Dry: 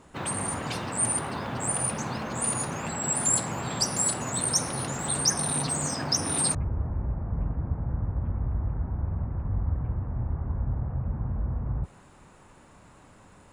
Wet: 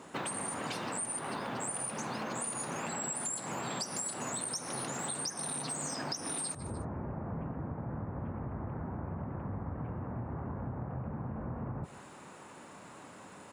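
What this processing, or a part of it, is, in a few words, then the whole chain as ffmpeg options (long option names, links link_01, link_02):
serial compression, leveller first: -af "highpass=190,aecho=1:1:150|300:0.0708|0.0262,acompressor=threshold=-33dB:ratio=2,acompressor=threshold=-39dB:ratio=6,volume=4.5dB"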